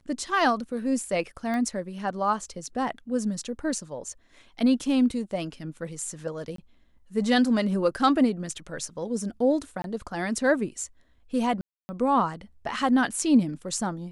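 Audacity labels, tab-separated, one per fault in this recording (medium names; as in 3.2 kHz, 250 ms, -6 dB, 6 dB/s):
1.540000	1.540000	pop -20 dBFS
6.560000	6.580000	dropout 23 ms
9.820000	9.840000	dropout 22 ms
11.610000	11.890000	dropout 280 ms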